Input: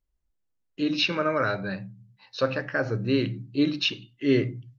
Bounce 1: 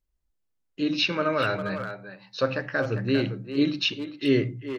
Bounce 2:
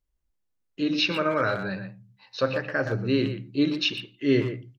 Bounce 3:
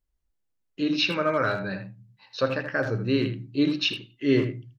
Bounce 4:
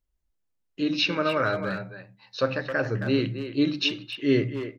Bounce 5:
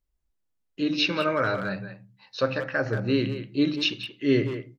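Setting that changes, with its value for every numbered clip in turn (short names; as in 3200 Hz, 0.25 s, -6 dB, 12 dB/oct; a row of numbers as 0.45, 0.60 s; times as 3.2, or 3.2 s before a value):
speakerphone echo, time: 400, 120, 80, 270, 180 ms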